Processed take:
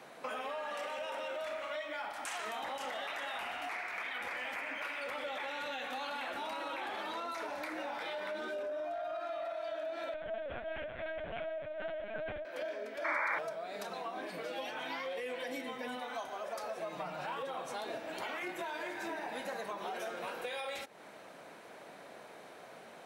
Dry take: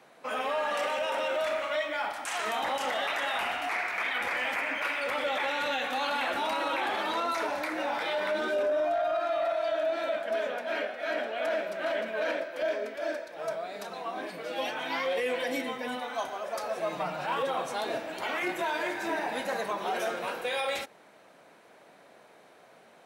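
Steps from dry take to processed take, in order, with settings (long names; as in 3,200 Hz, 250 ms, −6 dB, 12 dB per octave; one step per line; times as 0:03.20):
downward compressor 5 to 1, threshold −43 dBFS, peak gain reduction 15.5 dB
0:10.14–0:12.45: linear-prediction vocoder at 8 kHz pitch kept
0:13.04–0:13.39: sound drawn into the spectrogram noise 790–2,400 Hz −38 dBFS
level +4 dB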